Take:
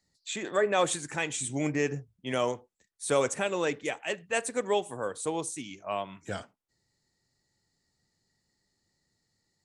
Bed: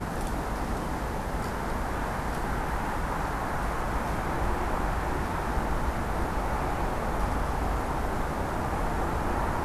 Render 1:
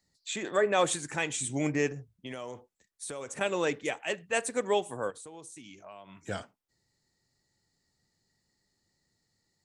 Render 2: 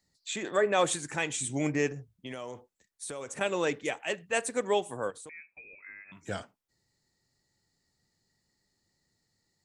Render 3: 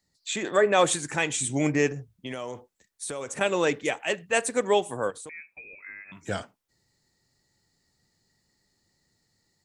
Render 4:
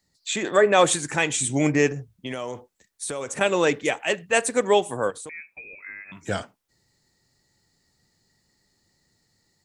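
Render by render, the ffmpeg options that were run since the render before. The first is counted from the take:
-filter_complex "[0:a]asettb=1/sr,asplit=3[a][b][c];[a]atrim=end=1.874[d];[b]atrim=start=1.87:end=3.41,asetpts=PTS-STARTPTS,afade=t=in:d=0.004:c=qsin,afade=t=out:st=1.536:d=0.004:c=qsin,acompressor=threshold=-35dB:ratio=12:attack=3.2:release=140:knee=1:detection=peak[e];[c]atrim=start=3.406[f];[d][e]acrossfade=d=0.004:c1=hsin:c2=qsin[g];[g][f]acrossfade=d=0.004:c1=qsin:c2=hsin,asettb=1/sr,asplit=3[h][i][j];[h]atrim=end=5.104[k];[i]atrim=start=5.1:end=6.18,asetpts=PTS-STARTPTS,afade=t=in:d=0.004:c=qsin,afade=t=out:st=1.076:d=0.004:c=qsin,acompressor=threshold=-45dB:ratio=5:attack=3.2:release=140:knee=1:detection=peak[l];[j]atrim=start=6.176[m];[k][l]acrossfade=d=0.004:c1=hsin:c2=qsin[n];[n][m]acrossfade=d=0.004:c1=qsin:c2=hsin"
-filter_complex "[0:a]asettb=1/sr,asplit=3[a][b][c];[a]atrim=end=5.294[d];[b]atrim=start=5.29:end=6.12,asetpts=PTS-STARTPTS,afade=t=in:d=0.004:c=qsin,afade=t=out:st=0.826:d=0.004:c=qsin,lowpass=f=2.3k:t=q:w=0.5098,lowpass=f=2.3k:t=q:w=0.6013,lowpass=f=2.3k:t=q:w=0.9,lowpass=f=2.3k:t=q:w=2.563,afreqshift=-2700[e];[c]atrim=start=6.116[f];[d][e]acrossfade=d=0.004:c1=hsin:c2=qsin[g];[g][f]acrossfade=d=0.004:c1=qsin:c2=hsin"
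-af "dynaudnorm=f=130:g=3:m=5dB"
-af "volume=3.5dB"

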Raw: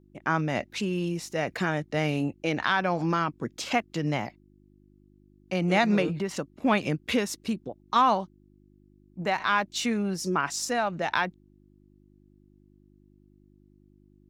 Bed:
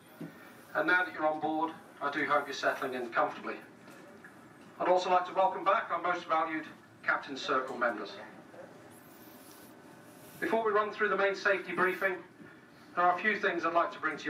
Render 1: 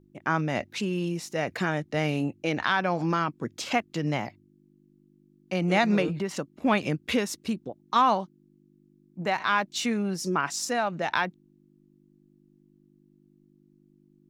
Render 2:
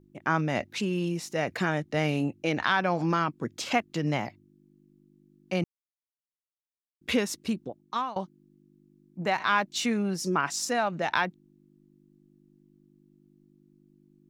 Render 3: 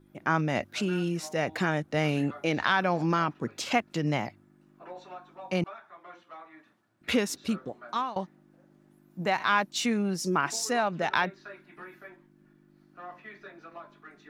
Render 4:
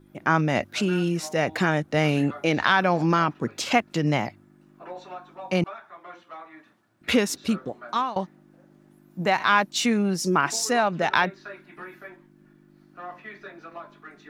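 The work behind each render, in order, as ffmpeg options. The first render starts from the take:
-af "bandreject=f=50:t=h:w=4,bandreject=f=100:t=h:w=4"
-filter_complex "[0:a]asplit=4[a][b][c][d];[a]atrim=end=5.64,asetpts=PTS-STARTPTS,afade=t=out:st=5.636:d=0.004:c=hsin[e];[b]atrim=start=5.64:end=7.01,asetpts=PTS-STARTPTS,volume=0[f];[c]atrim=start=7.01:end=8.16,asetpts=PTS-STARTPTS,afade=t=in:d=0.004:c=hsin,afade=t=out:st=0.64:d=0.51:silence=0.0668344[g];[d]atrim=start=8.16,asetpts=PTS-STARTPTS,afade=t=in:d=0.004:c=hsin:silence=0.0668344[h];[e][f][g][h]concat=n=4:v=0:a=1"
-filter_complex "[1:a]volume=-17dB[a];[0:a][a]amix=inputs=2:normalize=0"
-af "volume=5dB"

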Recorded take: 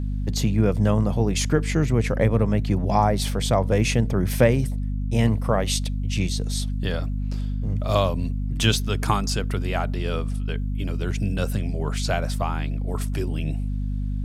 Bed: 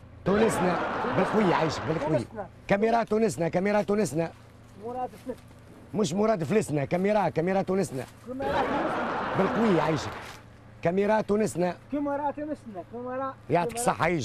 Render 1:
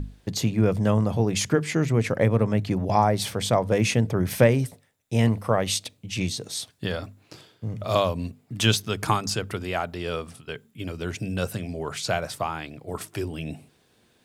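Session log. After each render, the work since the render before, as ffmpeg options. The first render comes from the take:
-af "bandreject=f=50:t=h:w=6,bandreject=f=100:t=h:w=6,bandreject=f=150:t=h:w=6,bandreject=f=200:t=h:w=6,bandreject=f=250:t=h:w=6"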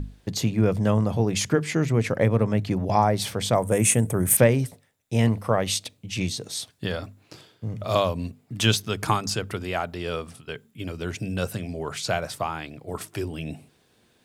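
-filter_complex "[0:a]asettb=1/sr,asplit=3[a][b][c];[a]atrim=end=3.554[d];[b]atrim=start=3.55:end=4.37,asetpts=PTS-STARTPTS,afade=t=in:d=0.004:c=qsin,afade=t=out:st=0.816:d=0.004:c=qsin,highshelf=f=6.5k:t=q:w=3:g=12[e];[c]atrim=start=4.366[f];[d][e]acrossfade=d=0.004:c1=hsin:c2=qsin[g];[g][f]acrossfade=d=0.004:c1=qsin:c2=hsin"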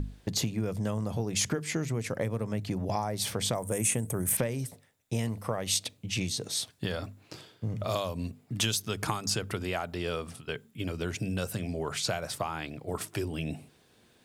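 -filter_complex "[0:a]acrossover=split=5000[a][b];[a]acompressor=threshold=-28dB:ratio=6[c];[b]alimiter=limit=-17.5dB:level=0:latency=1:release=220[d];[c][d]amix=inputs=2:normalize=0"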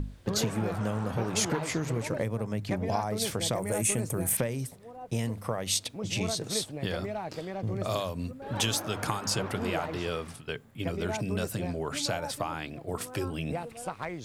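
-filter_complex "[1:a]volume=-11.5dB[a];[0:a][a]amix=inputs=2:normalize=0"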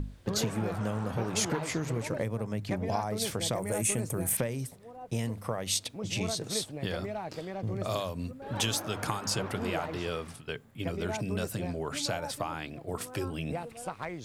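-af "volume=-1.5dB"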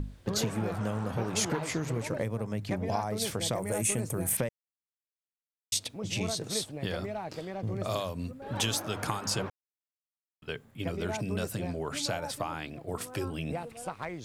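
-filter_complex "[0:a]asplit=5[a][b][c][d][e];[a]atrim=end=4.49,asetpts=PTS-STARTPTS,afade=t=out:st=4.486:d=0.004:c=hsin[f];[b]atrim=start=4.49:end=5.72,asetpts=PTS-STARTPTS,volume=0[g];[c]atrim=start=5.72:end=9.5,asetpts=PTS-STARTPTS,afade=t=in:d=0.004:c=hsin,afade=t=out:st=3.776:d=0.004:c=hsin[h];[d]atrim=start=9.5:end=10.42,asetpts=PTS-STARTPTS,volume=0[i];[e]atrim=start=10.42,asetpts=PTS-STARTPTS,afade=t=in:d=0.004:c=hsin[j];[f][g][h][i][j]concat=n=5:v=0:a=1"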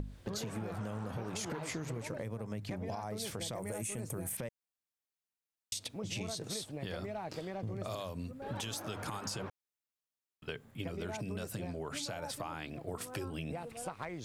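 -af "alimiter=limit=-22dB:level=0:latency=1,acompressor=threshold=-37dB:ratio=4"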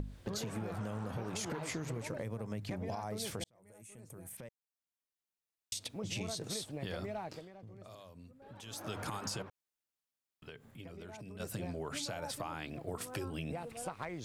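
-filter_complex "[0:a]asettb=1/sr,asplit=3[a][b][c];[a]atrim=end=9.424[d];[b]atrim=start=9.42:end=11.4,asetpts=PTS-STARTPTS,afade=t=in:d=0.004:c=qsin,afade=t=out:st=1.976:d=0.004:c=qsin,acompressor=threshold=-52dB:ratio=2:attack=3.2:release=140:knee=1:detection=peak[e];[c]atrim=start=11.396[f];[d][e]acrossfade=d=0.004:c1=hsin:c2=qsin[g];[g][f]acrossfade=d=0.004:c1=qsin:c2=hsin,asplit=4[h][i][j][k];[h]atrim=end=3.44,asetpts=PTS-STARTPTS,afade=t=out:st=3.436:d=0.004:c=hsin[l];[i]atrim=start=3.44:end=7.49,asetpts=PTS-STARTPTS,afade=t=in:d=2.64,afade=t=out:st=3.75:d=0.3:silence=0.223872[m];[j]atrim=start=7.49:end=8.61,asetpts=PTS-STARTPTS,volume=-13dB[n];[k]atrim=start=8.61,asetpts=PTS-STARTPTS,afade=t=in:d=0.3:silence=0.223872[o];[l][m][n][o]concat=n=4:v=0:a=1"

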